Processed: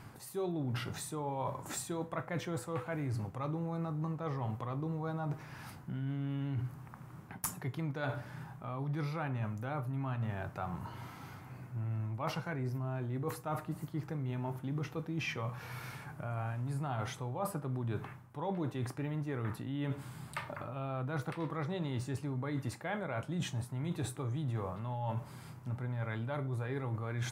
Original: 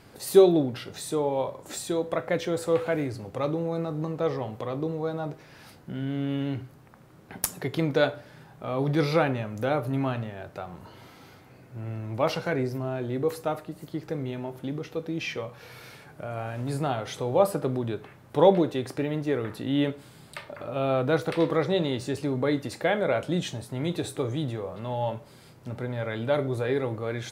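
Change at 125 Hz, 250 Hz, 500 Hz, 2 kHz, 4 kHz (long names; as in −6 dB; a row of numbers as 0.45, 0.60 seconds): −3.5, −10.5, −16.5, −8.5, −11.5 decibels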